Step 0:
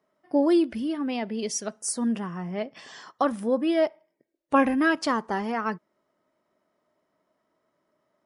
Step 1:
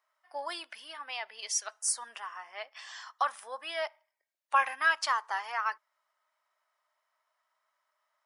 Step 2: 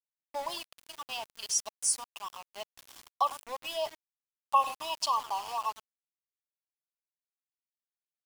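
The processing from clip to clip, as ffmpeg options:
-af "highpass=f=900:w=0.5412,highpass=f=900:w=1.3066"
-filter_complex "[0:a]asplit=2[s0][s1];[s1]adelay=100,highpass=300,lowpass=3400,asoftclip=type=hard:threshold=0.0668,volume=0.2[s2];[s0][s2]amix=inputs=2:normalize=0,afftfilt=real='re*(1-between(b*sr/4096,1200,2500))':imag='im*(1-between(b*sr/4096,1200,2500))':win_size=4096:overlap=0.75,aeval=exprs='val(0)*gte(abs(val(0)),0.00841)':c=same,volume=1.26"

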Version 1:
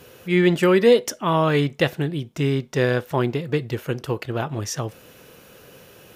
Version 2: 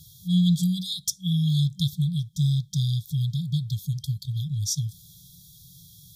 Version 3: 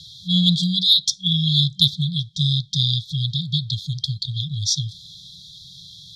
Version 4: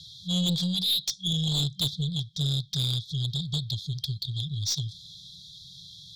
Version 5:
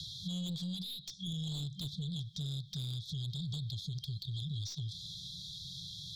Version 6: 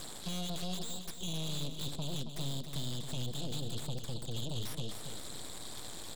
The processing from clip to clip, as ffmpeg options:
-af "afftfilt=real='re*(1-between(b*sr/4096,190,3200))':imag='im*(1-between(b*sr/4096,190,3200))':win_size=4096:overlap=0.75,volume=1.33"
-filter_complex "[0:a]lowpass=f=4000:t=q:w=3.8,acrossover=split=250|2600[s0][s1][s2];[s1]asoftclip=type=hard:threshold=0.0316[s3];[s2]acontrast=80[s4];[s0][s3][s4]amix=inputs=3:normalize=0,volume=1.12"
-af "aeval=exprs='(tanh(7.08*val(0)+0.1)-tanh(0.1))/7.08':c=same,volume=0.596"
-filter_complex "[0:a]acompressor=threshold=0.0355:ratio=6,alimiter=level_in=2.66:limit=0.0631:level=0:latency=1:release=76,volume=0.376,acrossover=split=300|5100[s0][s1][s2];[s0]acompressor=threshold=0.00794:ratio=4[s3];[s1]acompressor=threshold=0.00282:ratio=4[s4];[s2]acompressor=threshold=0.00141:ratio=4[s5];[s3][s4][s5]amix=inputs=3:normalize=0,volume=1.68"
-filter_complex "[0:a]acrossover=split=250|1100[s0][s1][s2];[s2]aeval=exprs='0.0126*(abs(mod(val(0)/0.0126+3,4)-2)-1)':c=same[s3];[s0][s1][s3]amix=inputs=3:normalize=0,aeval=exprs='0.0355*(cos(1*acos(clip(val(0)/0.0355,-1,1)))-cos(1*PI/2))+0.00708*(cos(7*acos(clip(val(0)/0.0355,-1,1)))-cos(7*PI/2))+0.01*(cos(8*acos(clip(val(0)/0.0355,-1,1)))-cos(8*PI/2))':c=same,aecho=1:1:274|548|822|1096:0.376|0.15|0.0601|0.0241,volume=0.75"

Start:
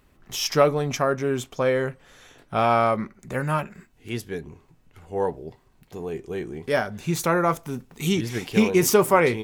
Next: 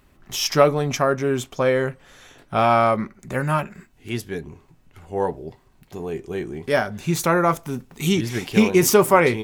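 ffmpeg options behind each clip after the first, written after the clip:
-af "bandreject=f=470:w=15,volume=1.41"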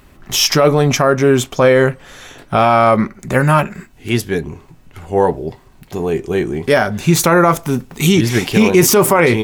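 -af "alimiter=level_in=3.98:limit=0.891:release=50:level=0:latency=1,volume=0.891"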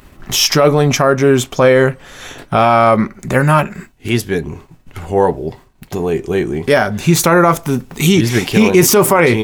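-filter_complex "[0:a]agate=range=0.0224:threshold=0.0224:ratio=3:detection=peak,asplit=2[s0][s1];[s1]acompressor=mode=upward:threshold=0.2:ratio=2.5,volume=0.75[s2];[s0][s2]amix=inputs=2:normalize=0,volume=0.631"

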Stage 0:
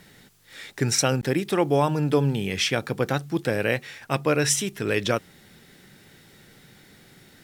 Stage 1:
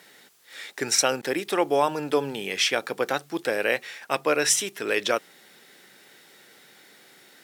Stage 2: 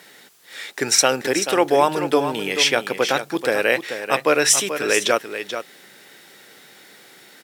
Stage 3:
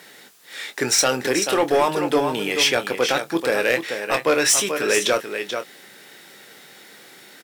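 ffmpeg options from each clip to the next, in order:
-af "highpass=410,volume=1.19"
-af "aecho=1:1:435:0.335,volume=1.88"
-filter_complex "[0:a]asoftclip=type=tanh:threshold=0.251,asplit=2[s0][s1];[s1]adelay=24,volume=0.335[s2];[s0][s2]amix=inputs=2:normalize=0,volume=1.12"

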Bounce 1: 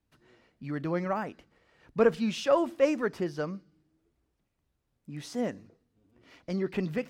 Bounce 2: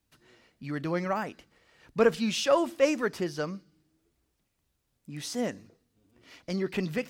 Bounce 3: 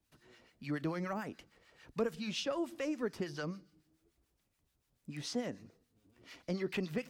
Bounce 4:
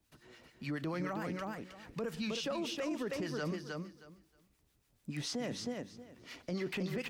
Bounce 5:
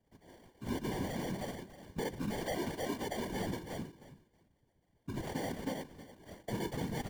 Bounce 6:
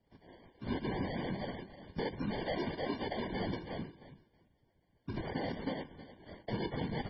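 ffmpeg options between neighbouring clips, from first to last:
-af "highshelf=f=2600:g=9.5"
-filter_complex "[0:a]acrossover=split=350|5900[s0][s1][s2];[s0]acompressor=threshold=0.0158:ratio=4[s3];[s1]acompressor=threshold=0.0158:ratio=4[s4];[s2]acompressor=threshold=0.00112:ratio=4[s5];[s3][s4][s5]amix=inputs=3:normalize=0,acrossover=split=970[s6][s7];[s6]aeval=exprs='val(0)*(1-0.7/2+0.7/2*cos(2*PI*6.9*n/s))':c=same[s8];[s7]aeval=exprs='val(0)*(1-0.7/2-0.7/2*cos(2*PI*6.9*n/s))':c=same[s9];[s8][s9]amix=inputs=2:normalize=0,volume=1.12"
-filter_complex "[0:a]asplit=2[s0][s1];[s1]aecho=0:1:315|630|945:0.501|0.0902|0.0162[s2];[s0][s2]amix=inputs=2:normalize=0,alimiter=level_in=2.99:limit=0.0631:level=0:latency=1:release=18,volume=0.335,volume=1.58"
-filter_complex "[0:a]acrossover=split=230[s0][s1];[s1]acrusher=samples=34:mix=1:aa=0.000001[s2];[s0][s2]amix=inputs=2:normalize=0,afftfilt=real='hypot(re,im)*cos(2*PI*random(0))':imag='hypot(re,im)*sin(2*PI*random(1))':win_size=512:overlap=0.75,volume=2.11"
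-af "volume=1.12" -ar 22050 -c:a libmp3lame -b:a 16k

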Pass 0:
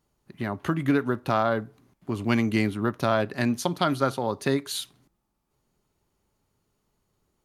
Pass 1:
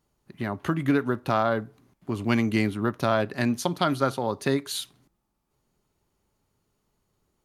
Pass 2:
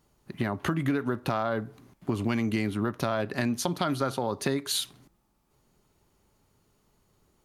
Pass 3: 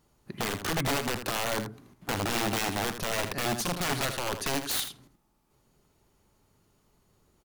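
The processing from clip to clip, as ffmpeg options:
-af anull
-filter_complex "[0:a]asplit=2[s0][s1];[s1]alimiter=limit=0.112:level=0:latency=1:release=18,volume=1[s2];[s0][s2]amix=inputs=2:normalize=0,acompressor=threshold=0.0562:ratio=4"
-af "aeval=exprs='(mod(14.1*val(0)+1,2)-1)/14.1':c=same,aecho=1:1:80:0.335"

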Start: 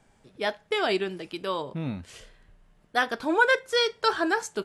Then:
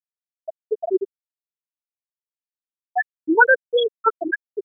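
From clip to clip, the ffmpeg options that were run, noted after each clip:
-af "afftfilt=real='re*gte(hypot(re,im),0.562)':imag='im*gte(hypot(re,im),0.562)':win_size=1024:overlap=0.75,volume=2.66"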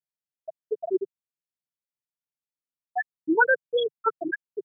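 -af "equalizer=f=150:t=o:w=1.2:g=11.5,volume=0.473"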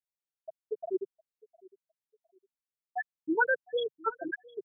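-af "aecho=1:1:708|1416:0.0668|0.0194,volume=0.473"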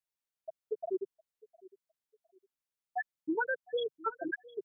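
-af "acompressor=threshold=0.0355:ratio=6"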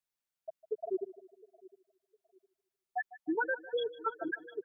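-af "aecho=1:1:152|304|456|608:0.141|0.0622|0.0273|0.012"

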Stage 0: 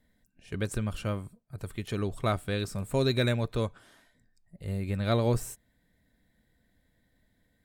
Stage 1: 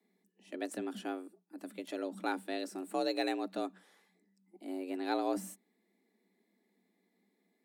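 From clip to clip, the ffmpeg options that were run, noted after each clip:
-filter_complex "[0:a]afreqshift=180,acrossover=split=280[s0][s1];[s0]asoftclip=type=tanh:threshold=0.0178[s2];[s2][s1]amix=inputs=2:normalize=0,volume=0.447"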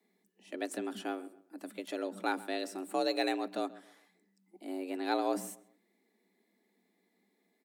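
-filter_complex "[0:a]lowshelf=f=180:g=-9,asplit=2[s0][s1];[s1]adelay=133,lowpass=f=2500:p=1,volume=0.126,asplit=2[s2][s3];[s3]adelay=133,lowpass=f=2500:p=1,volume=0.31,asplit=2[s4][s5];[s5]adelay=133,lowpass=f=2500:p=1,volume=0.31[s6];[s0][s2][s4][s6]amix=inputs=4:normalize=0,volume=1.41"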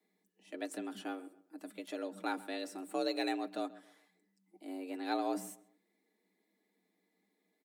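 -af "aecho=1:1:6.5:0.43,volume=0.596"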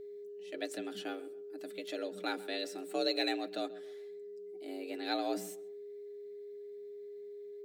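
-af "aeval=exprs='val(0)+0.00501*sin(2*PI*410*n/s)':c=same,equalizer=f=250:t=o:w=0.67:g=-7,equalizer=f=1000:t=o:w=0.67:g=-11,equalizer=f=4000:t=o:w=0.67:g=4,equalizer=f=10000:t=o:w=0.67:g=-6,volume=1.58"

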